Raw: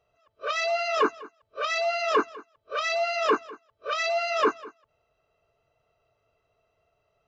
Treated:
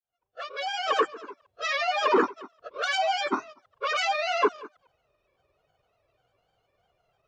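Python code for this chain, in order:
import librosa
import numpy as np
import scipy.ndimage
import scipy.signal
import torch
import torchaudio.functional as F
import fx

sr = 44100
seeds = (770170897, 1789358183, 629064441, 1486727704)

y = fx.fade_in_head(x, sr, length_s=1.15)
y = fx.granulator(y, sr, seeds[0], grain_ms=100.0, per_s=20.0, spray_ms=100.0, spread_st=3)
y = y * 10.0 ** (1.5 / 20.0)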